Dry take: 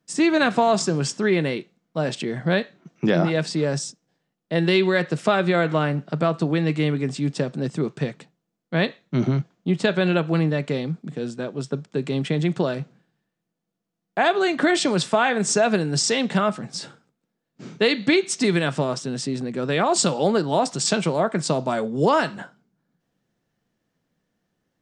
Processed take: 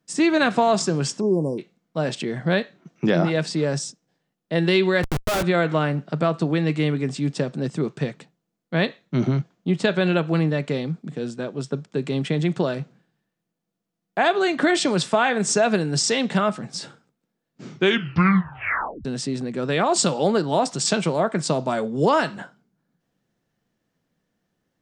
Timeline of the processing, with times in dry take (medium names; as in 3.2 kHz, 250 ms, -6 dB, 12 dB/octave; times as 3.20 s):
1.20–1.59 s: spectral selection erased 1.1–4.8 kHz
5.03–5.43 s: Schmitt trigger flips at -25.5 dBFS
17.66 s: tape stop 1.39 s